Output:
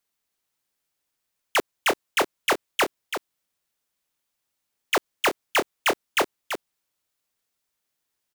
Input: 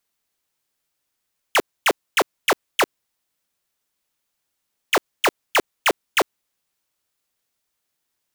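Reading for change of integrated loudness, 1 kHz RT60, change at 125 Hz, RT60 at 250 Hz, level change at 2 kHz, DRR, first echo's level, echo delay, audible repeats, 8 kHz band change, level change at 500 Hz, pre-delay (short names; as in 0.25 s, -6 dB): -3.5 dB, none, -3.0 dB, none, -3.0 dB, none, -8.0 dB, 0.335 s, 1, -3.0 dB, -3.0 dB, none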